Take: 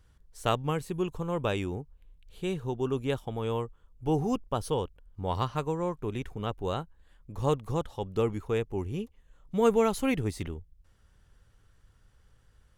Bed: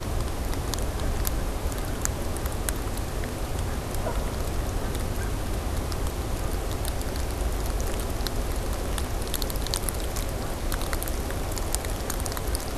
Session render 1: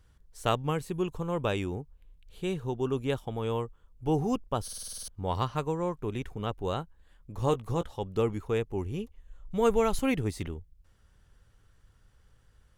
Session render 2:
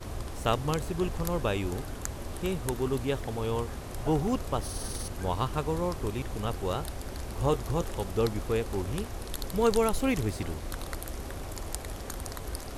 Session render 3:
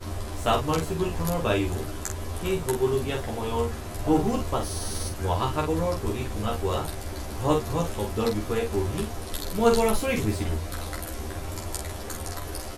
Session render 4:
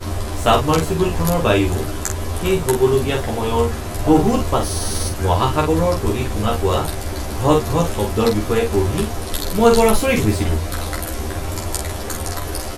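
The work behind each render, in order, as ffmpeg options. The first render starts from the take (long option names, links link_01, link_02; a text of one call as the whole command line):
ffmpeg -i in.wav -filter_complex "[0:a]asettb=1/sr,asplit=3[link_01][link_02][link_03];[link_01]atrim=end=7.374[link_04];[link_02]atrim=start=7.37:end=7.93,asetpts=PTS-STARTPTS,afade=type=in:duration=0.004:curve=qsin,afade=type=out:start_time=0.556:duration=0.004:curve=qsin,asplit=2[link_05][link_06];[link_06]adelay=17,volume=-10.5dB[link_07];[link_05][link_07]amix=inputs=2:normalize=0,atrim=end_sample=24696[link_08];[link_03]atrim=start=7.926[link_09];[link_04][link_08]acrossfade=duration=0.004:curve1=hsin:curve2=qsin[link_10];[link_10][link_09]acrossfade=duration=0.004:curve1=qsin:curve2=hsin,asettb=1/sr,asplit=3[link_11][link_12][link_13];[link_11]atrim=end=8.744[link_14];[link_12]atrim=start=8.74:end=9.99,asetpts=PTS-STARTPTS,afade=type=in:duration=0.004:curve=qsin,afade=type=out:start_time=1.246:duration=0.004:curve=qsin,asubboost=boost=11.5:cutoff=92[link_15];[link_13]atrim=start=9.986[link_16];[link_14][link_15]acrossfade=duration=0.004:curve1=hsin:curve2=qsin[link_17];[link_17][link_16]acrossfade=duration=0.004:curve1=qsin:curve2=hsin,asplit=10[link_18][link_19][link_20][link_21][link_22][link_23][link_24][link_25][link_26][link_27];[link_18]atrim=end=4.682[link_28];[link_19]atrim=start=4.628:end=4.682[link_29];[link_20]atrim=start=4.628:end=4.682[link_30];[link_21]atrim=start=4.628:end=4.682[link_31];[link_22]atrim=start=4.628:end=4.682[link_32];[link_23]atrim=start=4.628:end=4.682[link_33];[link_24]atrim=start=4.628:end=4.682[link_34];[link_25]atrim=start=4.628:end=4.682[link_35];[link_26]atrim=start=4.628:end=4.682[link_36];[link_27]atrim=start=5.078[link_37];[link_28][link_29]acrossfade=duration=0.004:curve1=hsin:curve2=hsin[link_38];[link_38][link_30]acrossfade=duration=0.004:curve1=hsin:curve2=hsin[link_39];[link_39][link_31]acrossfade=duration=0.004:curve1=hsin:curve2=hsin[link_40];[link_40][link_32]acrossfade=duration=0.004:curve1=hsin:curve2=hsin[link_41];[link_41][link_33]acrossfade=duration=0.004:curve1=hsin:curve2=hsin[link_42];[link_42][link_34]acrossfade=duration=0.004:curve1=hsin:curve2=hsin[link_43];[link_43][link_35]acrossfade=duration=0.004:curve1=hsin:curve2=hsin[link_44];[link_44][link_36]acrossfade=duration=0.004:curve1=hsin:curve2=hsin[link_45];[link_45][link_37]acrossfade=duration=0.004:curve1=hsin:curve2=hsin" out.wav
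ffmpeg -i in.wav -i bed.wav -filter_complex "[1:a]volume=-8.5dB[link_01];[0:a][link_01]amix=inputs=2:normalize=0" out.wav
ffmpeg -i in.wav -filter_complex "[0:a]asplit=2[link_01][link_02];[link_02]adelay=13,volume=-3dB[link_03];[link_01][link_03]amix=inputs=2:normalize=0,aecho=1:1:10|47:0.708|0.596" out.wav
ffmpeg -i in.wav -af "volume=9dB,alimiter=limit=-2dB:level=0:latency=1" out.wav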